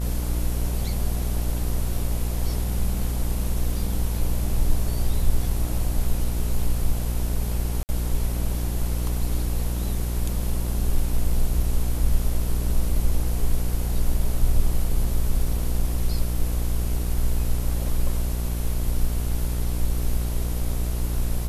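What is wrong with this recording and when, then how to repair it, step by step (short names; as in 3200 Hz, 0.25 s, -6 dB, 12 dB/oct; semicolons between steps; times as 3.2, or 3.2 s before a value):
buzz 60 Hz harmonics 25 -26 dBFS
7.83–7.89 gap 59 ms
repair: de-hum 60 Hz, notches 25; interpolate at 7.83, 59 ms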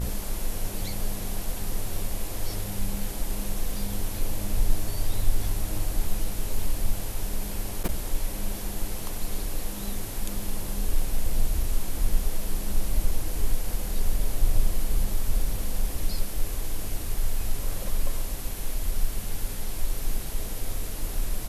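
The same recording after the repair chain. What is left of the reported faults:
none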